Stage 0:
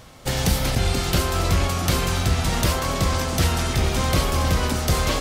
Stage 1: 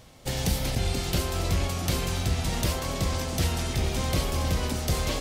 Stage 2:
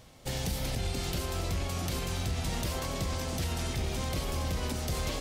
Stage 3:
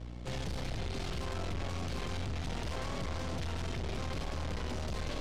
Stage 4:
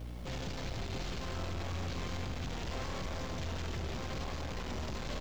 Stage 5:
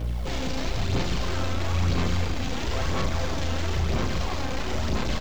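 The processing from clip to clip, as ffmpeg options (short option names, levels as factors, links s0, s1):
-af "equalizer=f=1300:w=1.6:g=-5.5,volume=0.531"
-af "alimiter=limit=0.0944:level=0:latency=1:release=69,volume=0.708"
-af "aeval=exprs='val(0)+0.00562*(sin(2*PI*60*n/s)+sin(2*PI*2*60*n/s)/2+sin(2*PI*3*60*n/s)/3+sin(2*PI*4*60*n/s)/4+sin(2*PI*5*60*n/s)/5)':c=same,aeval=exprs='(tanh(112*val(0)+0.7)-tanh(0.7))/112':c=same,adynamicsmooth=sensitivity=7:basefreq=4600,volume=2"
-af "aresample=16000,asoftclip=type=tanh:threshold=0.0106,aresample=44100,acrusher=bits=10:mix=0:aa=0.000001,aecho=1:1:172:0.501,volume=1.5"
-filter_complex "[0:a]asplit=2[s0][s1];[s1]adelay=35,volume=0.631[s2];[s0][s2]amix=inputs=2:normalize=0,aphaser=in_gain=1:out_gain=1:delay=3.9:decay=0.37:speed=1:type=sinusoidal,volume=2.66"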